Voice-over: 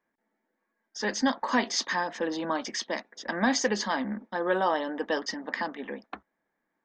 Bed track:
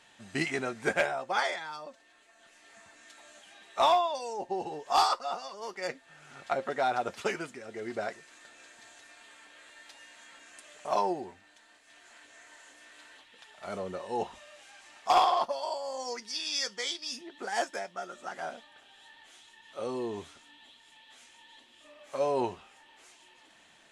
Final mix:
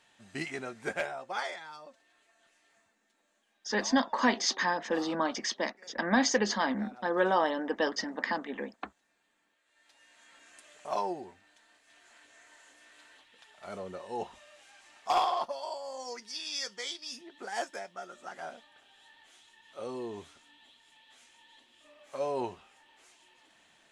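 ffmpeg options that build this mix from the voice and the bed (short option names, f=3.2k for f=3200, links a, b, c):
-filter_complex "[0:a]adelay=2700,volume=-0.5dB[a];[1:a]volume=12dB,afade=t=out:st=2.25:d=0.75:silence=0.158489,afade=t=in:st=9.65:d=0.82:silence=0.125893[b];[a][b]amix=inputs=2:normalize=0"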